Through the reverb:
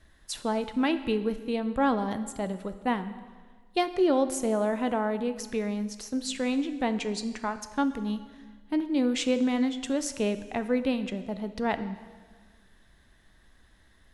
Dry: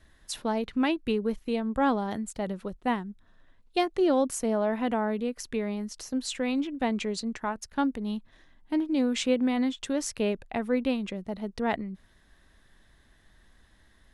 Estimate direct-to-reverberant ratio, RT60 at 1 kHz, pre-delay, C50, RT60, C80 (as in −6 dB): 10.5 dB, 1.5 s, 8 ms, 12.0 dB, 1.5 s, 13.5 dB